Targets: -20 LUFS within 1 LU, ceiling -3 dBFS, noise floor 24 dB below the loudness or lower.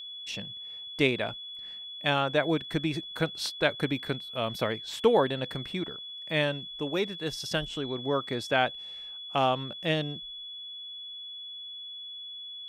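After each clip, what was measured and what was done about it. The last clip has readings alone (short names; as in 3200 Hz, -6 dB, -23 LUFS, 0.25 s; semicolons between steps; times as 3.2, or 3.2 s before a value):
steady tone 3400 Hz; tone level -39 dBFS; loudness -30.5 LUFS; peak -9.0 dBFS; loudness target -20.0 LUFS
-> notch 3400 Hz, Q 30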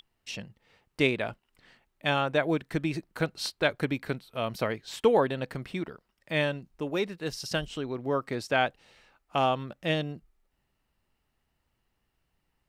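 steady tone none; loudness -30.0 LUFS; peak -9.5 dBFS; loudness target -20.0 LUFS
-> gain +10 dB; limiter -3 dBFS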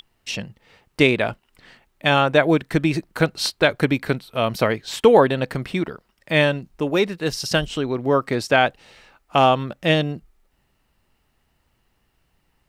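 loudness -20.5 LUFS; peak -3.0 dBFS; noise floor -68 dBFS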